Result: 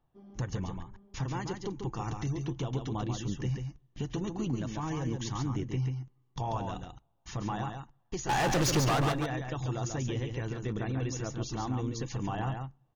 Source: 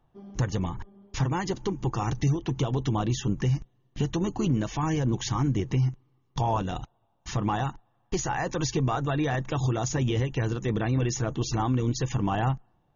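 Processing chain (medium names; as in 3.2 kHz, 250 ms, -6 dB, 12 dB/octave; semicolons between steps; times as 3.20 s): 8.29–9.12 s: waveshaping leveller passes 5; delay 139 ms -5.5 dB; on a send at -23.5 dB: reverberation RT60 0.35 s, pre-delay 3 ms; on the sum: trim -8 dB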